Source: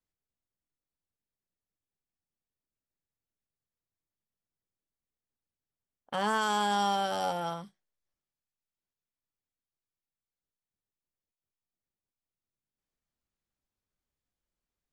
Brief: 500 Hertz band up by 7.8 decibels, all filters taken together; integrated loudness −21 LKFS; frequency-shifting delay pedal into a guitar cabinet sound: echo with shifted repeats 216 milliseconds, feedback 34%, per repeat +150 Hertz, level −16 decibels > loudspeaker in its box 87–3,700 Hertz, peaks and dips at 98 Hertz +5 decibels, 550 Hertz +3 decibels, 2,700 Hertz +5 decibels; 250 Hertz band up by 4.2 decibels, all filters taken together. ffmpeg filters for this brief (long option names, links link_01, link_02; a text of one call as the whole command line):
ffmpeg -i in.wav -filter_complex "[0:a]equalizer=frequency=250:width_type=o:gain=4.5,equalizer=frequency=500:width_type=o:gain=6.5,asplit=4[link_01][link_02][link_03][link_04];[link_02]adelay=216,afreqshift=150,volume=-16dB[link_05];[link_03]adelay=432,afreqshift=300,volume=-25.4dB[link_06];[link_04]adelay=648,afreqshift=450,volume=-34.7dB[link_07];[link_01][link_05][link_06][link_07]amix=inputs=4:normalize=0,highpass=87,equalizer=frequency=98:width_type=q:width=4:gain=5,equalizer=frequency=550:width_type=q:width=4:gain=3,equalizer=frequency=2700:width_type=q:width=4:gain=5,lowpass=frequency=3700:width=0.5412,lowpass=frequency=3700:width=1.3066,volume=6dB" out.wav